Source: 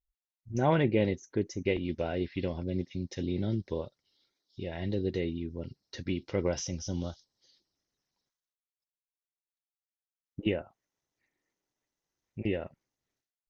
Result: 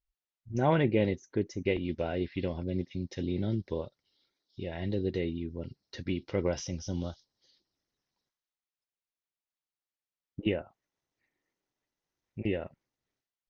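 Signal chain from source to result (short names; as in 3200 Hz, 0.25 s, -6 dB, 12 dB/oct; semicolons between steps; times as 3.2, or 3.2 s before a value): LPF 5400 Hz 12 dB/oct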